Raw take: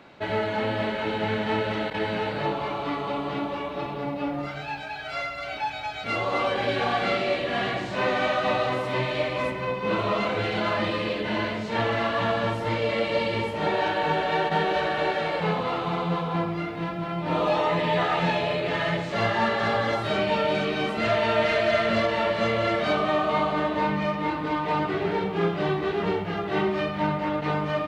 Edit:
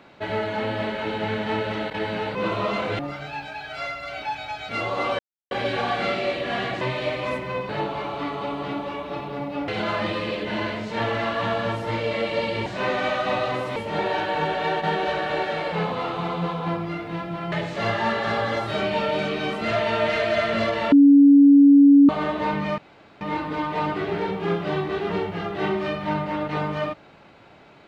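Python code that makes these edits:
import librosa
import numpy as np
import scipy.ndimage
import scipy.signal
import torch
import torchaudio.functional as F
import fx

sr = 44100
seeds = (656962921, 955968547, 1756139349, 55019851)

y = fx.edit(x, sr, fx.swap(start_s=2.35, length_s=1.99, other_s=9.82, other_length_s=0.64),
    fx.insert_silence(at_s=6.54, length_s=0.32),
    fx.move(start_s=7.84, length_s=1.1, to_s=13.44),
    fx.cut(start_s=17.2, length_s=1.68),
    fx.bleep(start_s=22.28, length_s=1.17, hz=282.0, db=-8.5),
    fx.insert_room_tone(at_s=24.14, length_s=0.43), tone=tone)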